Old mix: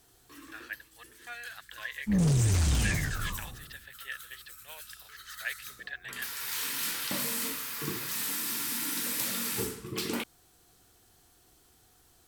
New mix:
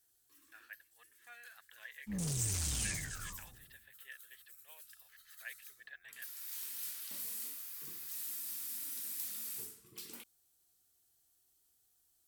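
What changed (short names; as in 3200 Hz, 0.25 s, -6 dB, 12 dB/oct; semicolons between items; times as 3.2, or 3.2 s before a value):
speech: add LPF 2300 Hz; first sound -10.5 dB; master: add pre-emphasis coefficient 0.8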